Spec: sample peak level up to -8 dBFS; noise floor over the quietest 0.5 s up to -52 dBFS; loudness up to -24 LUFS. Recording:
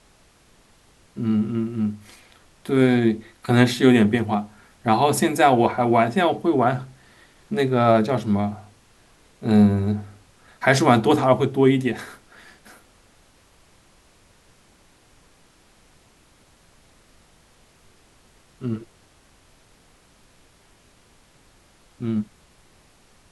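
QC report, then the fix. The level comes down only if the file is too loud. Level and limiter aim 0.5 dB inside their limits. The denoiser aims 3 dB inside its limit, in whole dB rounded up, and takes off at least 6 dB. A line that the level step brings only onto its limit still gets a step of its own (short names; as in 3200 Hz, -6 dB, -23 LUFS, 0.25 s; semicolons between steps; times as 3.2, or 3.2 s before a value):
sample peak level -2.5 dBFS: fail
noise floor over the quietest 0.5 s -56 dBFS: OK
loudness -20.5 LUFS: fail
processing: gain -4 dB; limiter -8.5 dBFS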